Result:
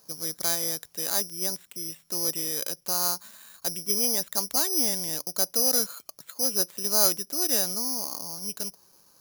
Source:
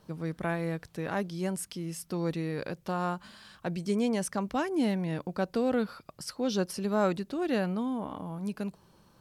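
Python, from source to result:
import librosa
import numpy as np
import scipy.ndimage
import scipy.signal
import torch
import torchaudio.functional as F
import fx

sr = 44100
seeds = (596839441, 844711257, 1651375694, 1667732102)

y = fx.bass_treble(x, sr, bass_db=-11, treble_db=14)
y = (np.kron(scipy.signal.resample_poly(y, 1, 8), np.eye(8)[0]) * 8)[:len(y)]
y = y * librosa.db_to_amplitude(-2.5)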